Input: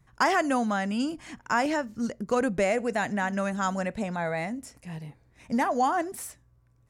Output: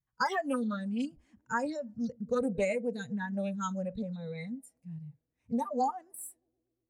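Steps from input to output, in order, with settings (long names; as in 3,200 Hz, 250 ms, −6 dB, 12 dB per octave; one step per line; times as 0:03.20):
feedback echo with a band-pass in the loop 117 ms, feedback 80%, band-pass 360 Hz, level −18 dB
noise reduction from a noise print of the clip's start 24 dB
highs frequency-modulated by the lows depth 0.14 ms
level −4 dB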